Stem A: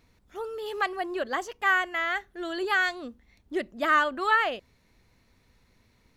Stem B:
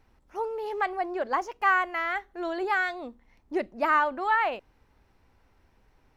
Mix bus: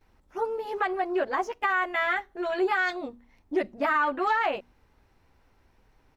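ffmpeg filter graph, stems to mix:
-filter_complex "[0:a]afwtdn=0.0141,alimiter=limit=0.106:level=0:latency=1,volume=1.12[s0];[1:a]bandreject=f=60:t=h:w=6,bandreject=f=120:t=h:w=6,bandreject=f=180:t=h:w=6,bandreject=f=240:t=h:w=6,adelay=11,volume=1.06[s1];[s0][s1]amix=inputs=2:normalize=0,alimiter=limit=0.15:level=0:latency=1:release=52"

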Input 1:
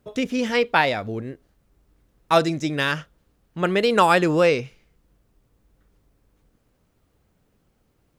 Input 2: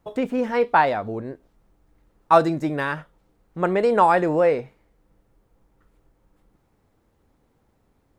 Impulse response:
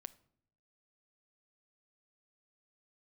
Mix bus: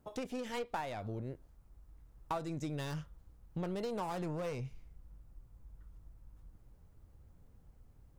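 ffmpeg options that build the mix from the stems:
-filter_complex "[0:a]asubboost=boost=7.5:cutoff=110,aeval=exprs='(tanh(12.6*val(0)+0.3)-tanh(0.3))/12.6':c=same,volume=0.562[s0];[1:a]volume=-1,volume=0.398[s1];[s0][s1]amix=inputs=2:normalize=0,equalizer=f=3000:w=0.7:g=-5.5,acompressor=threshold=0.0158:ratio=5"

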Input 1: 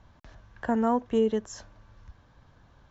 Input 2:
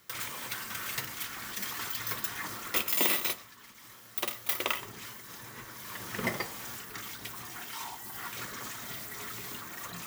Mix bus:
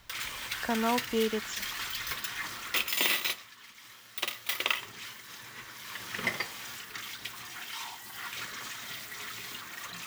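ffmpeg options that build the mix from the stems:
-filter_complex "[0:a]volume=0.501[s0];[1:a]volume=0.501[s1];[s0][s1]amix=inputs=2:normalize=0,equalizer=f=3000:w=0.49:g=11"

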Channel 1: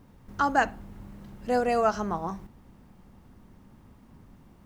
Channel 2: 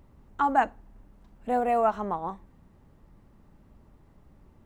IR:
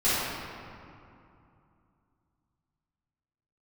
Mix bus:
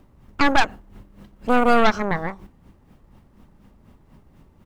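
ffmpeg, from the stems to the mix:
-filter_complex "[0:a]equalizer=f=2900:w=1.5:g=4.5,dynaudnorm=f=180:g=3:m=1.41,aeval=exprs='val(0)*pow(10,-20*(0.5-0.5*cos(2*PI*4.1*n/s))/20)':c=same,volume=0.944[s0];[1:a]aeval=exprs='0.316*(cos(1*acos(clip(val(0)/0.316,-1,1)))-cos(1*PI/2))+0.0891*(cos(4*acos(clip(val(0)/0.316,-1,1)))-cos(4*PI/2))+0.0708*(cos(8*acos(clip(val(0)/0.316,-1,1)))-cos(8*PI/2))':c=same,volume=-1,adelay=1,volume=1.26[s1];[s0][s1]amix=inputs=2:normalize=0"

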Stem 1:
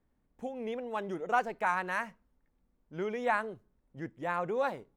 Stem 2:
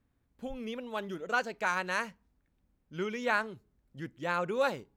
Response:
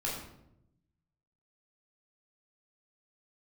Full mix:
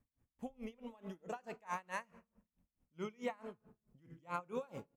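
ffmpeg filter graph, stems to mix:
-filter_complex "[0:a]highpass=f=790:w=0.5412,highpass=f=790:w=1.3066,volume=0.282[s0];[1:a]equalizer=f=400:t=o:w=0.67:g=-3,equalizer=f=1600:t=o:w=0.67:g=-6,equalizer=f=4000:t=o:w=0.67:g=-10,alimiter=level_in=1.33:limit=0.0631:level=0:latency=1:release=70,volume=0.75,volume=-1,adelay=0.7,volume=0.75,asplit=2[s1][s2];[s2]volume=0.188[s3];[2:a]atrim=start_sample=2205[s4];[s3][s4]afir=irnorm=-1:irlink=0[s5];[s0][s1][s5]amix=inputs=3:normalize=0,aeval=exprs='val(0)*pow(10,-28*(0.5-0.5*cos(2*PI*4.6*n/s))/20)':c=same"

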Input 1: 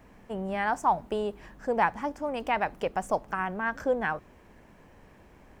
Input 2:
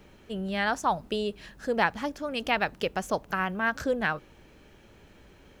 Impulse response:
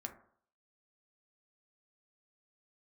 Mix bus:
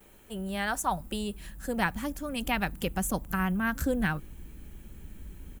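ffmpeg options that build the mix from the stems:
-filter_complex "[0:a]volume=0.188[s0];[1:a]asubboost=boost=11:cutoff=180,adelay=5.2,volume=0.708[s1];[s0][s1]amix=inputs=2:normalize=0,equalizer=f=110:w=1.6:g=-9,aexciter=amount=7.3:drive=4.1:freq=7500"

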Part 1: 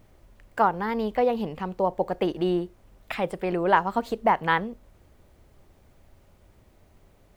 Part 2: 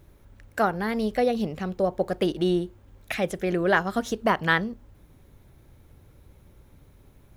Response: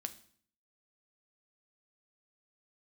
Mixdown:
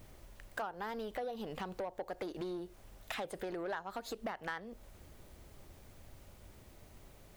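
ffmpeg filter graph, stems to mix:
-filter_complex "[0:a]highshelf=f=2800:g=7.5,acompressor=threshold=0.0398:ratio=6,asoftclip=type=tanh:threshold=0.0376,volume=0.944[s0];[1:a]volume=-1,volume=0.224[s1];[s0][s1]amix=inputs=2:normalize=0,acompressor=threshold=0.0112:ratio=3"

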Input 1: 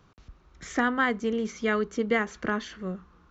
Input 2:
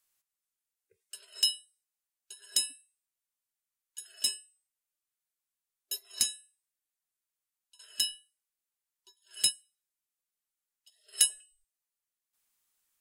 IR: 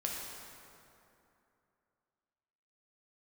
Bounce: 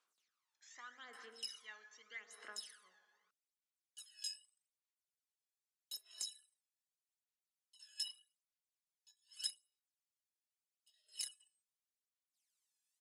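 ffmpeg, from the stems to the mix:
-filter_complex "[0:a]volume=0.126,asplit=3[s0][s1][s2];[s1]volume=0.562[s3];[1:a]aecho=1:1:4.7:0.64,acompressor=threshold=0.02:ratio=2.5,flanger=delay=15.5:depth=7.6:speed=0.75,volume=0.794[s4];[s2]apad=whole_len=573820[s5];[s4][s5]sidechaincompress=threshold=0.00398:ratio=8:attack=8.7:release=212[s6];[2:a]atrim=start_sample=2205[s7];[s3][s7]afir=irnorm=-1:irlink=0[s8];[s0][s6][s8]amix=inputs=3:normalize=0,aderivative,aphaser=in_gain=1:out_gain=1:delay=1.2:decay=0.69:speed=0.82:type=sinusoidal,highpass=380,lowpass=5800"

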